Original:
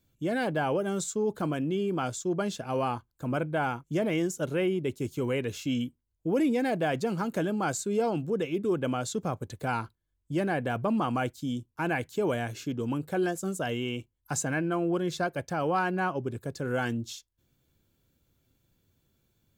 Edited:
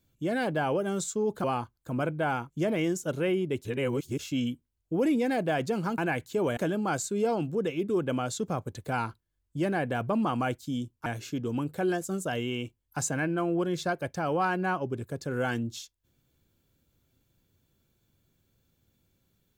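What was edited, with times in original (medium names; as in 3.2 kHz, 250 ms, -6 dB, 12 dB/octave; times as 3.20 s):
1.44–2.78 s: delete
4.99–5.53 s: reverse
11.81–12.40 s: move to 7.32 s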